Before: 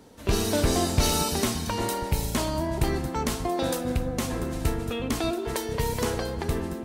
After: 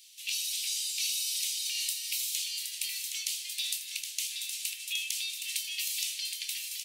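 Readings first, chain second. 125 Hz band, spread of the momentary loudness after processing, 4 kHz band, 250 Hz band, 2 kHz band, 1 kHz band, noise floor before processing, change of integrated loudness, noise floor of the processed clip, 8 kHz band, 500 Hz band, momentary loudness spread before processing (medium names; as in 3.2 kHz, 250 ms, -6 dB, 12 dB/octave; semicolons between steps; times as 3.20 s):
under -40 dB, 4 LU, +2.0 dB, under -40 dB, -3.5 dB, under -40 dB, -35 dBFS, -4.5 dB, -44 dBFS, +1.5 dB, under -40 dB, 6 LU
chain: steep high-pass 2.5 kHz 48 dB/octave; compression 6:1, threshold -39 dBFS, peak gain reduction 13.5 dB; doubling 24 ms -11 dB; delay 768 ms -6 dB; trim +8 dB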